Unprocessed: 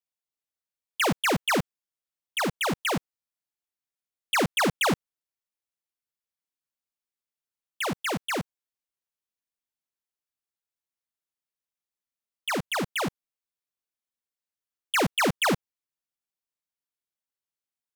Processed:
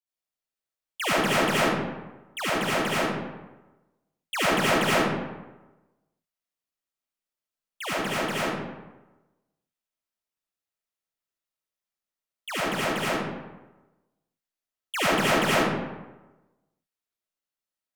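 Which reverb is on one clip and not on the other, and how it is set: digital reverb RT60 1.1 s, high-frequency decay 0.6×, pre-delay 35 ms, DRR -9 dB; gain -7 dB

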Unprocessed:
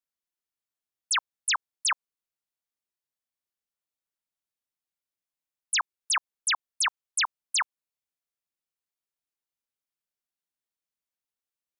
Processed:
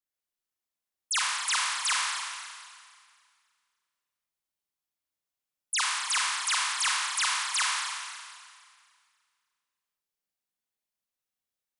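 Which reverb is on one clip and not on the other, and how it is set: Schroeder reverb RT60 2 s, combs from 30 ms, DRR -4 dB; gain -4 dB

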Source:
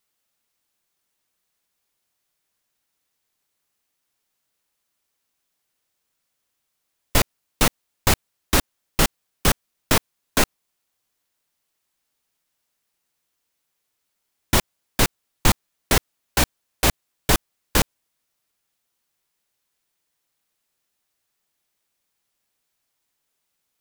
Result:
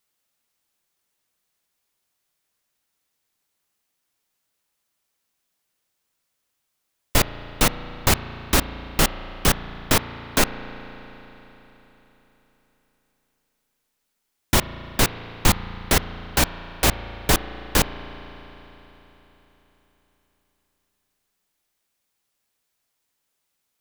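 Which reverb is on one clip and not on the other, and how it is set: spring tank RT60 4 s, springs 35 ms, chirp 40 ms, DRR 11.5 dB

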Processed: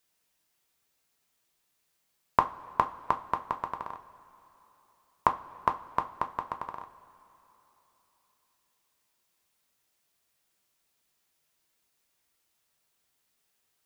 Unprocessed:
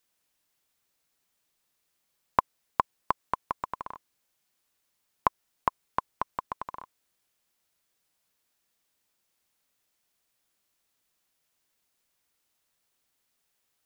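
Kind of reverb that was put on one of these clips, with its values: two-slope reverb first 0.26 s, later 3.7 s, from -21 dB, DRR 5 dB

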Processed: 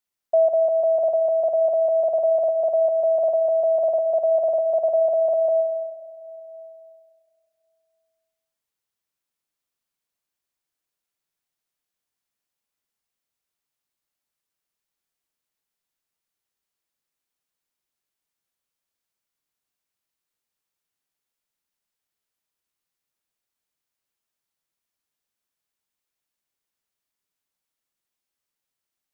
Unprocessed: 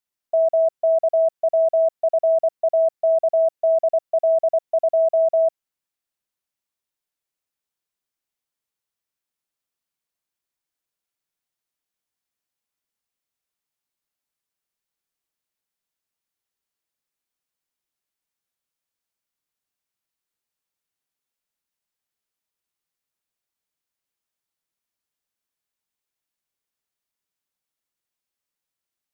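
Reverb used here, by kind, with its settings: digital reverb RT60 2.6 s, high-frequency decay 0.4×, pre-delay 70 ms, DRR 14 dB; gain +1 dB

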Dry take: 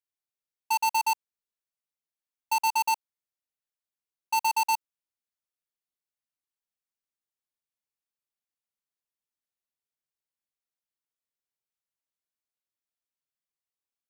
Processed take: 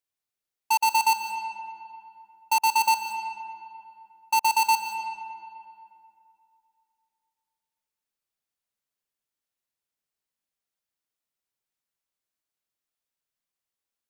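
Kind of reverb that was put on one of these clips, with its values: digital reverb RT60 2.7 s, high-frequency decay 0.6×, pre-delay 0.105 s, DRR 8 dB; gain +3.5 dB

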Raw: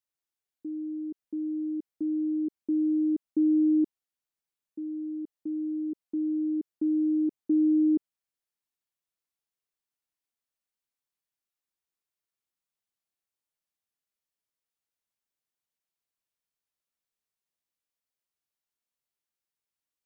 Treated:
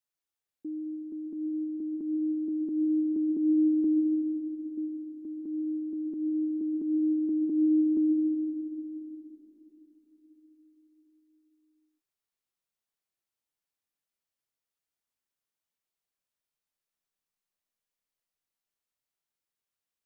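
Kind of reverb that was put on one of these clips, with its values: digital reverb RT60 4.6 s, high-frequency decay 0.5×, pre-delay 80 ms, DRR 5 dB; gain -1 dB

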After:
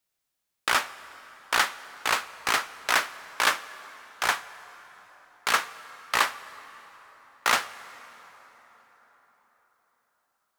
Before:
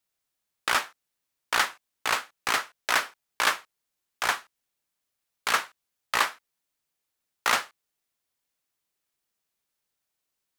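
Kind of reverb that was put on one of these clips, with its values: plate-style reverb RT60 4.9 s, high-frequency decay 0.6×, DRR 15 dB; gain +1 dB

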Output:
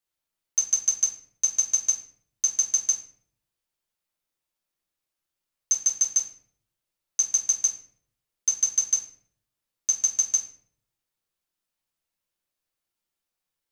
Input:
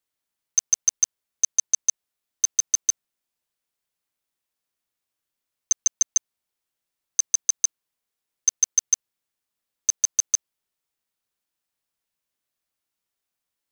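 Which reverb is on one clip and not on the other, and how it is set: shoebox room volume 87 m³, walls mixed, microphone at 0.83 m; gain -4.5 dB

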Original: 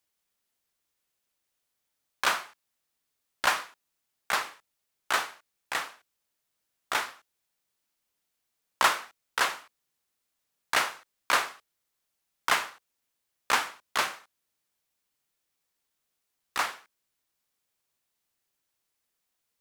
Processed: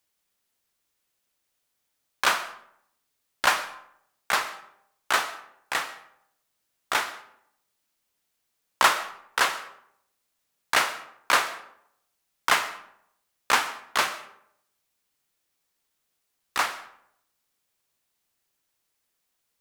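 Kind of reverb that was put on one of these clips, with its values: digital reverb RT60 0.72 s, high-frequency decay 0.55×, pre-delay 80 ms, DRR 15.5 dB; gain +3.5 dB

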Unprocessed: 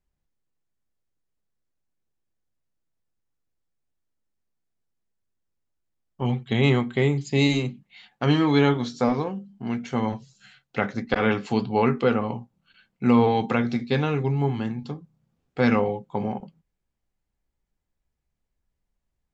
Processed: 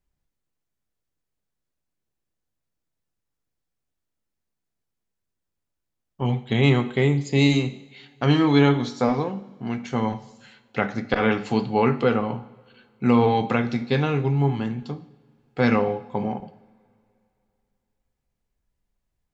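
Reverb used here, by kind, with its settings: two-slope reverb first 0.77 s, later 2.9 s, from -20 dB, DRR 12 dB; gain +1 dB

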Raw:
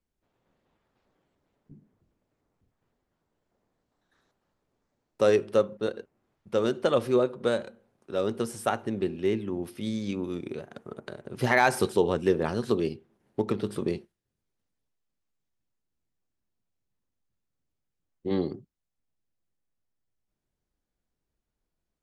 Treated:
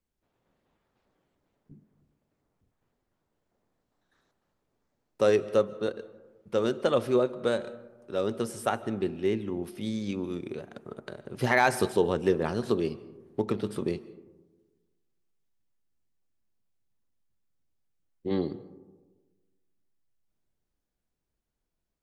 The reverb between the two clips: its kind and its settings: digital reverb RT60 1.3 s, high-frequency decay 0.3×, pre-delay 0.105 s, DRR 18.5 dB; gain -1 dB

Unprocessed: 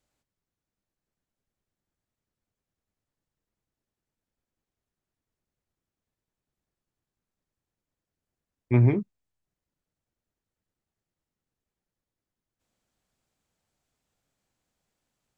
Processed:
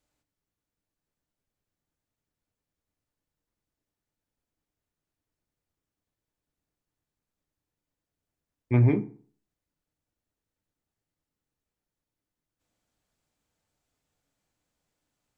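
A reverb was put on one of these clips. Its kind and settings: FDN reverb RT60 0.47 s, low-frequency decay 1×, high-frequency decay 0.6×, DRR 9 dB; gain -1 dB

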